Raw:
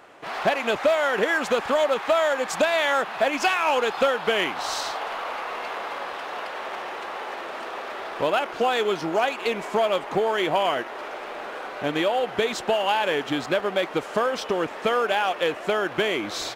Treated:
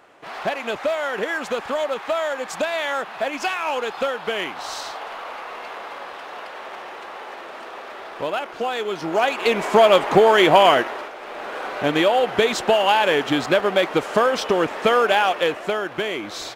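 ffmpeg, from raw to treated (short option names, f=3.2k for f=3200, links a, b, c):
-af "volume=18dB,afade=t=in:st=8.9:d=1.01:silence=0.251189,afade=t=out:st=10.74:d=0.39:silence=0.237137,afade=t=in:st=11.13:d=0.56:silence=0.375837,afade=t=out:st=15.18:d=0.67:silence=0.446684"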